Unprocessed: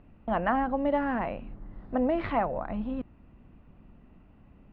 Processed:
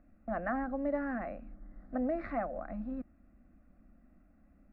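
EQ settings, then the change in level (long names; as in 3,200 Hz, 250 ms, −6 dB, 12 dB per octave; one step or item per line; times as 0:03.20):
phaser with its sweep stopped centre 630 Hz, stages 8
−5.5 dB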